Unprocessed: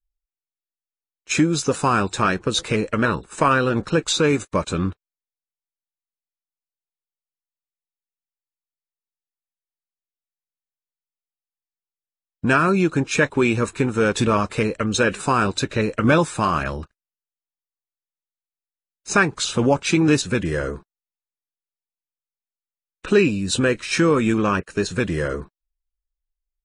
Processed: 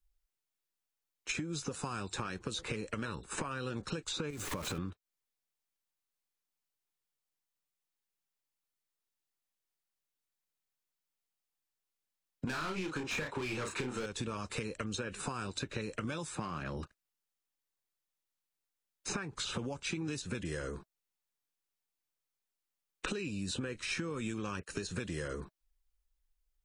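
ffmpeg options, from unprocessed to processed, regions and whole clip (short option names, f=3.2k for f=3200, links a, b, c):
-filter_complex "[0:a]asettb=1/sr,asplit=3[a][b][c];[a]atrim=end=4.304[d];[b]atrim=start=4.3:end=4.78,asetpts=PTS-STARTPTS,afade=t=in:d=0.004:c=qsin,afade=t=out:st=0.476:d=0.004:c=qsin,aeval=exprs='val(0)+0.5*0.0562*sgn(val(0))':c=same,acompressor=threshold=-27dB:ratio=3:attack=3.2:release=140:knee=1:detection=peak[e];[c]atrim=start=4.776[f];[d][e]acrossfade=d=0.004:c1=hsin:c2=qsin[g];[g][f]acrossfade=d=0.004:c1=qsin:c2=hsin,asettb=1/sr,asplit=3[h][i][j];[h]atrim=end=12.474[k];[i]atrim=start=12.47:end=14.06,asetpts=PTS-STARTPTS,afade=t=in:d=0.004:c=qsin,afade=t=out:st=1.586:d=0.004:c=qsin,asplit=2[l][m];[m]highpass=f=720:p=1,volume=24dB,asoftclip=type=tanh:threshold=-4.5dB[n];[l][n]amix=inputs=2:normalize=0,lowpass=f=1.5k:p=1,volume=-6dB,asplit=2[o][p];[p]adelay=32,volume=-4dB[q];[o][q]amix=inputs=2:normalize=0,atrim=end_sample=70119[r];[j]atrim=start=14.056[s];[k][r]acrossfade=d=0.004:c1=hsin:c2=qsin[t];[t][s]acrossfade=d=0.004:c1=qsin:c2=hsin,asettb=1/sr,asplit=3[u][v][w];[u]atrim=end=16.354[x];[v]atrim=start=16.35:end=16.77,asetpts=PTS-STARTPTS,afade=t=in:d=0.004:c=qsin,afade=t=out:st=0.416:d=0.004:c=qsin,aeval=exprs='if(lt(val(0),0),0.708*val(0),val(0))':c=same,highpass=170,aemphasis=mode=reproduction:type=bsi[y];[w]atrim=start=16.766[z];[x][y]acrossfade=d=0.004:c1=hsin:c2=qsin[aa];[aa][z]acrossfade=d=0.004:c1=qsin:c2=hsin,acompressor=threshold=-31dB:ratio=5,bandreject=f=640:w=15,acrossover=split=120|3300[ab][ac][ad];[ab]acompressor=threshold=-52dB:ratio=4[ae];[ac]acompressor=threshold=-43dB:ratio=4[af];[ad]acompressor=threshold=-48dB:ratio=4[ag];[ae][af][ag]amix=inputs=3:normalize=0,volume=4.5dB"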